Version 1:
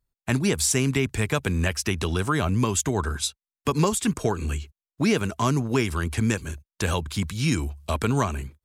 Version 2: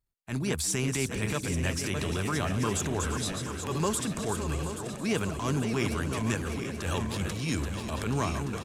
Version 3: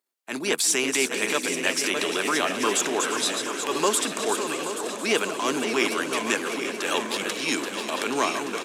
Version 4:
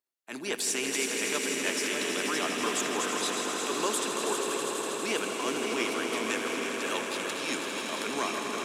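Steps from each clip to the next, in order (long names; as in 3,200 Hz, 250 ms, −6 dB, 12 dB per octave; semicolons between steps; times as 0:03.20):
feedback delay that plays each chunk backwards 415 ms, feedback 69%, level −8 dB; transient designer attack −10 dB, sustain +3 dB; on a send: echo with shifted repeats 349 ms, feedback 63%, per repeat +61 Hz, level −13 dB; on the sum: level −5.5 dB
high-pass filter 290 Hz 24 dB per octave; dynamic equaliser 3,000 Hz, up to +4 dB, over −46 dBFS, Q 0.91; feedback echo with a swinging delay time 535 ms, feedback 71%, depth 133 cents, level −16.5 dB; level +7 dB
echo that builds up and dies away 81 ms, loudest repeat 5, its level −9.5 dB; level −8 dB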